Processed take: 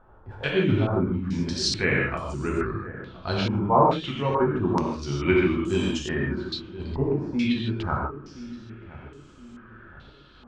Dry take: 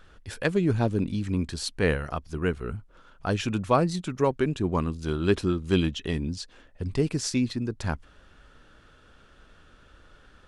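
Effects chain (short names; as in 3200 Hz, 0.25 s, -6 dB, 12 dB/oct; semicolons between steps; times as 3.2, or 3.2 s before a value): repeated pitch sweeps -2 st, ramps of 1.384 s; darkening echo 1.021 s, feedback 43%, low-pass 970 Hz, level -14 dB; non-linear reverb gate 0.18 s flat, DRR -3 dB; stepped low-pass 2.3 Hz 890–7400 Hz; gain -3 dB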